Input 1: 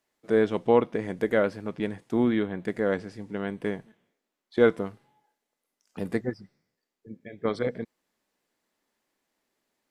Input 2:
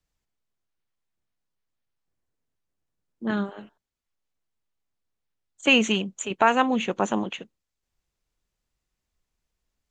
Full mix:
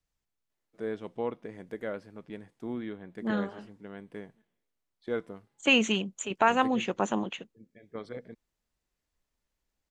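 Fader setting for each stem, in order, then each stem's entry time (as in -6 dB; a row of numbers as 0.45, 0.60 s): -12.5, -4.0 dB; 0.50, 0.00 s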